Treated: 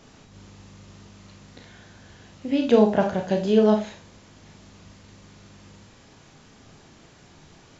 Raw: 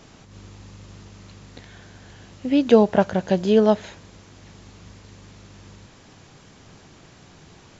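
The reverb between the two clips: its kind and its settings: Schroeder reverb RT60 0.3 s, combs from 26 ms, DRR 3 dB; trim -4 dB

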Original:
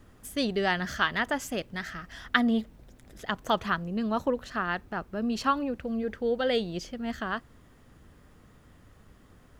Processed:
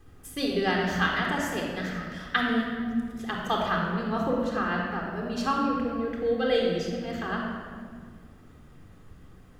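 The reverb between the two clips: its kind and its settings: simulated room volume 3000 m³, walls mixed, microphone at 3.8 m; trim -4 dB

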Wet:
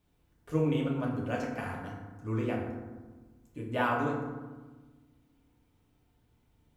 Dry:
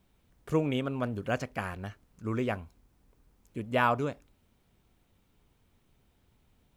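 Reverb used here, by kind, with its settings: FDN reverb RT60 1.3 s, low-frequency decay 1.45×, high-frequency decay 0.45×, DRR -3.5 dB; trim -7.5 dB

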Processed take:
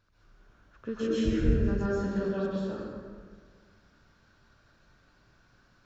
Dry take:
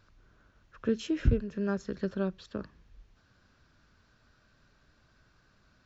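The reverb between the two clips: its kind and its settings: plate-style reverb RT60 1.8 s, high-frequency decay 0.6×, pre-delay 115 ms, DRR -10 dB; trim -7.5 dB

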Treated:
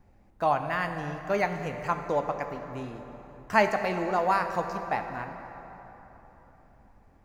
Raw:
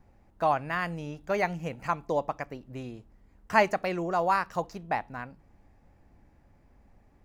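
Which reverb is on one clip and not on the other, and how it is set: plate-style reverb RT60 3.8 s, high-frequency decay 0.6×, DRR 6 dB

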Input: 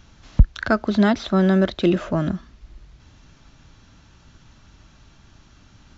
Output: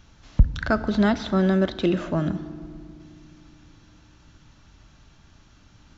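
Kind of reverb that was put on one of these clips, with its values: FDN reverb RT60 2.3 s, low-frequency decay 1.5×, high-frequency decay 0.6×, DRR 12 dB; trim -3 dB

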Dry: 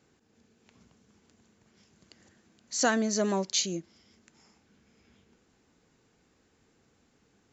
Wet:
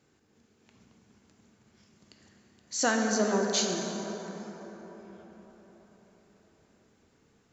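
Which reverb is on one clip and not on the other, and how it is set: plate-style reverb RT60 4.9 s, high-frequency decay 0.4×, DRR 1 dB; trim -1.5 dB

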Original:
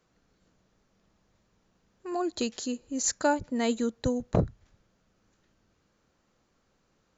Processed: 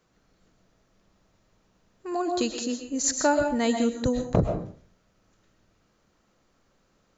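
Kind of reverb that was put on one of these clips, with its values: algorithmic reverb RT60 0.47 s, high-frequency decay 0.6×, pre-delay 85 ms, DRR 4.5 dB; trim +2.5 dB

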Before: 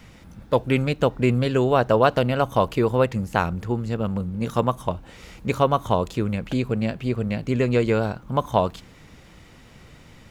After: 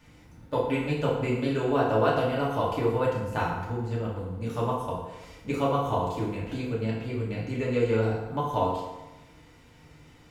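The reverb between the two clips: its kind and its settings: FDN reverb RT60 1.1 s, low-frequency decay 0.8×, high-frequency decay 0.7×, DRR -6 dB; trim -12.5 dB

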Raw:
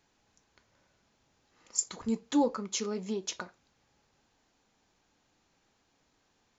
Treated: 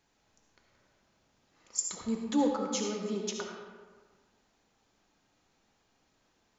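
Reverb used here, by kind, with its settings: algorithmic reverb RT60 1.5 s, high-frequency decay 0.55×, pre-delay 30 ms, DRR 1.5 dB; trim -2 dB

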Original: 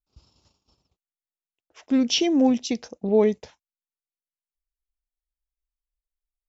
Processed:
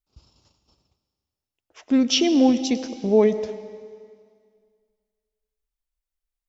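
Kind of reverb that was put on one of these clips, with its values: algorithmic reverb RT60 2 s, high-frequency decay 1×, pre-delay 65 ms, DRR 12.5 dB; trim +2 dB

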